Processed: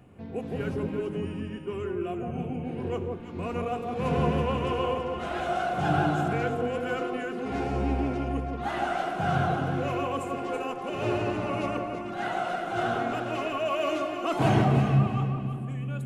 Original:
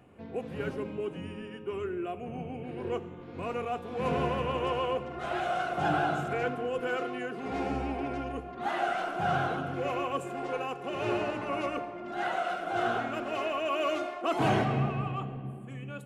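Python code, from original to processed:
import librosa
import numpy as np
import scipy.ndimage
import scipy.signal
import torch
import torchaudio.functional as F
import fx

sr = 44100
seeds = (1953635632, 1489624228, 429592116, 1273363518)

p1 = fx.bass_treble(x, sr, bass_db=7, treble_db=3)
y = p1 + fx.echo_alternate(p1, sr, ms=165, hz=1100.0, feedback_pct=52, wet_db=-2.5, dry=0)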